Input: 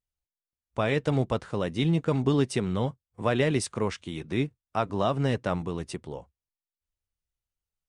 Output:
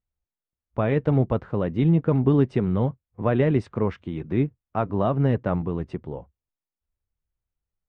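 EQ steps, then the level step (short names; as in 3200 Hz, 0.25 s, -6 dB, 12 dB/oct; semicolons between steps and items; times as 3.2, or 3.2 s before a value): LPF 1900 Hz 12 dB/oct; low shelf 480 Hz +6.5 dB; 0.0 dB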